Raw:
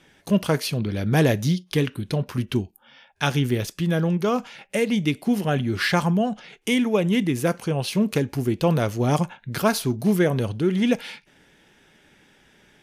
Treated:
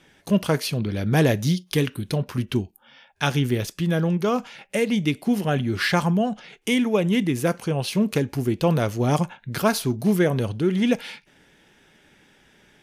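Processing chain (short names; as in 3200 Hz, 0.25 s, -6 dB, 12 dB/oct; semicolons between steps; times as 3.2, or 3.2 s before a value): 1.46–2.17 high shelf 5300 Hz -> 7700 Hz +7 dB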